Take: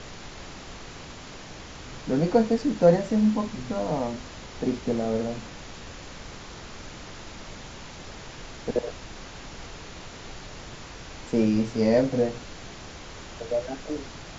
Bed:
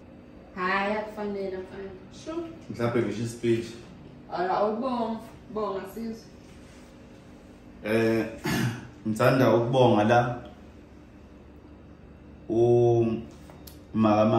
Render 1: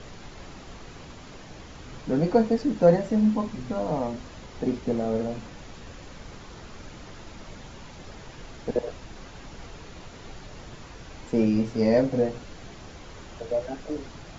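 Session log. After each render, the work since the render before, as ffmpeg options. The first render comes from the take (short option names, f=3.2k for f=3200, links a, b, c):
-af "afftdn=nr=6:nf=-42"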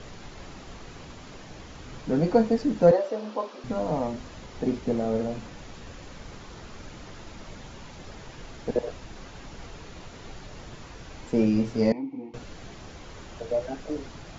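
-filter_complex "[0:a]asettb=1/sr,asplit=3[a][b][c];[a]atrim=end=2.914[d];[b]atrim=start=2.91:end=3.64,asetpts=PTS-STARTPTS,afade=t=in:d=0.004:c=qsin,afade=t=out:st=0.726:d=0.004:c=qsin,highpass=f=360:w=0.5412,highpass=f=360:w=1.3066,equalizer=f=550:t=q:w=4:g=7,equalizer=f=1.2k:t=q:w=4:g=4,equalizer=f=2k:t=q:w=4:g=-6,lowpass=f=5.9k:w=0.5412,lowpass=f=5.9k:w=1.3066[e];[c]atrim=start=3.636[f];[d][e]acrossfade=d=0.004:c1=hsin:c2=qsin[g];[g][f]acrossfade=d=0.004:c1=qsin:c2=hsin,asettb=1/sr,asplit=3[h][i][j];[h]atrim=end=11.924[k];[i]atrim=start=11.92:end=12.34,asetpts=PTS-STARTPTS,afade=t=in:d=0.004:c=qsin,afade=t=out:st=0.416:d=0.004:c=qsin,asplit=3[l][m][n];[l]bandpass=f=300:t=q:w=8,volume=0dB[o];[m]bandpass=f=870:t=q:w=8,volume=-6dB[p];[n]bandpass=f=2.24k:t=q:w=8,volume=-9dB[q];[o][p][q]amix=inputs=3:normalize=0[r];[j]atrim=start=12.336[s];[k][r]acrossfade=d=0.004:c1=hsin:c2=qsin[t];[t][s]acrossfade=d=0.004:c1=qsin:c2=hsin"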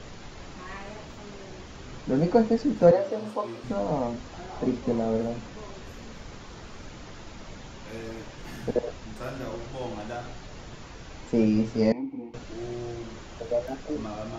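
-filter_complex "[1:a]volume=-15.5dB[a];[0:a][a]amix=inputs=2:normalize=0"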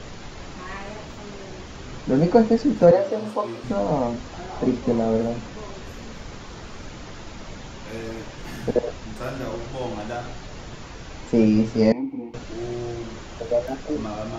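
-af "volume=5dB,alimiter=limit=-3dB:level=0:latency=1"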